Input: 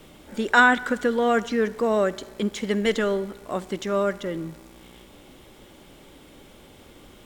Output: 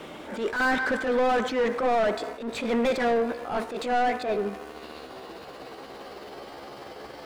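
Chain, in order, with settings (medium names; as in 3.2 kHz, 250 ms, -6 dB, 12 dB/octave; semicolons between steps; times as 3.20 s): pitch bend over the whole clip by +6.5 st starting unshifted; overdrive pedal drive 30 dB, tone 1.2 kHz, clips at -6.5 dBFS; attacks held to a fixed rise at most 110 dB/s; trim -8 dB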